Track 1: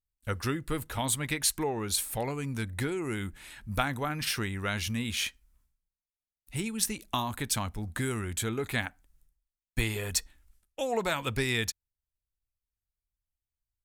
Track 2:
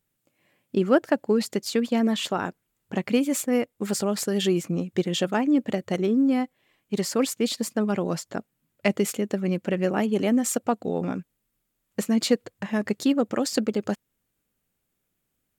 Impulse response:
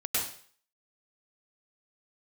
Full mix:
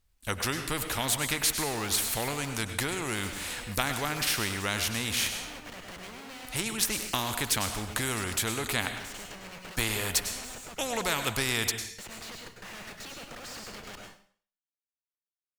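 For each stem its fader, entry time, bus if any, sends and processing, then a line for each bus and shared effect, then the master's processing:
+0.5 dB, 0.00 s, send −19.5 dB, no processing
−18.0 dB, 0.00 s, send −5.5 dB, guitar amp tone stack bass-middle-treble 10-0-10; downward compressor, threshold −34 dBFS, peak gain reduction 9.5 dB; comparator with hysteresis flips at −51.5 dBFS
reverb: on, RT60 0.50 s, pre-delay 95 ms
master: high-shelf EQ 9,500 Hz −8 dB; every bin compressed towards the loudest bin 2 to 1

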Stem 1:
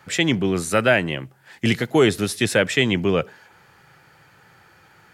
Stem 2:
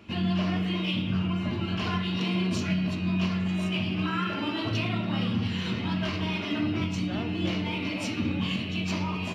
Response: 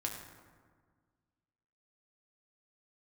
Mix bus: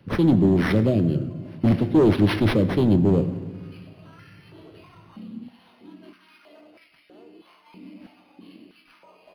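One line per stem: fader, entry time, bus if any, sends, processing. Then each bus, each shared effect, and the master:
+2.5 dB, 0.00 s, send −3.5 dB, Chebyshev band-stop filter 320–6,500 Hz, order 2; hard clipping −19 dBFS, distortion −11 dB
−18.5 dB, 0.00 s, send −12.5 dB, high-pass on a step sequencer 3.1 Hz 230–1,900 Hz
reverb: on, RT60 1.6 s, pre-delay 5 ms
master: parametric band 1,600 Hz −5.5 dB 2.2 octaves; linearly interpolated sample-rate reduction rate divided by 6×

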